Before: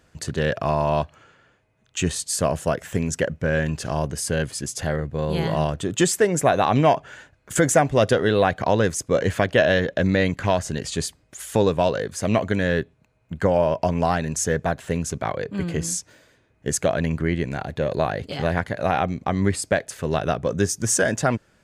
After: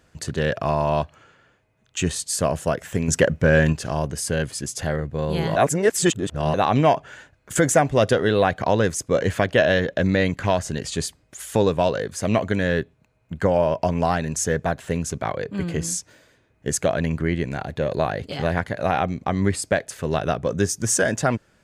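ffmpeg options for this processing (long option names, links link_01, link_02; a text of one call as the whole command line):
ffmpeg -i in.wav -filter_complex "[0:a]asettb=1/sr,asplit=3[link_01][link_02][link_03];[link_01]atrim=end=3.084[link_04];[link_02]atrim=start=3.08:end=3.73,asetpts=PTS-STARTPTS,afade=type=in:duration=0.004:curve=qsin,afade=type=out:start_time=0.646:duration=0.004:curve=qsin,acontrast=56[link_05];[link_03]atrim=start=3.726[link_06];[link_04][link_05]acrossfade=duration=0.004:curve1=hsin:curve2=qsin[link_07];[link_07][link_06]acrossfade=duration=0.004:curve1=qsin:curve2=hsin,asplit=3[link_08][link_09][link_10];[link_08]atrim=end=5.562[link_11];[link_09]atrim=start=5.558:end=6.542,asetpts=PTS-STARTPTS,areverse[link_12];[link_10]atrim=start=6.538[link_13];[link_11][link_12]acrossfade=duration=0.004:curve1=hsin:curve2=hsin[link_14];[link_14][link_13]acrossfade=duration=0.004:curve1=hsin:curve2=hsin" out.wav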